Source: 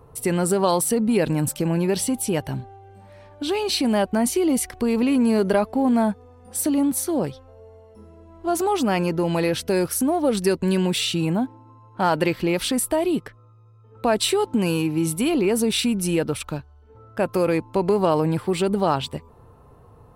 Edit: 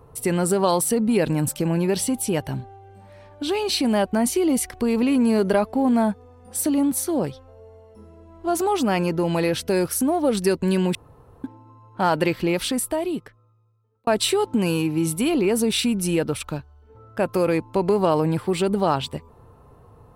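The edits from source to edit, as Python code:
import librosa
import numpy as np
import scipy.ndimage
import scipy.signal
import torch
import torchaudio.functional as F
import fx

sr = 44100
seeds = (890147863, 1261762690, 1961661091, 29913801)

y = fx.edit(x, sr, fx.room_tone_fill(start_s=10.95, length_s=0.49),
    fx.fade_out_span(start_s=12.5, length_s=1.57), tone=tone)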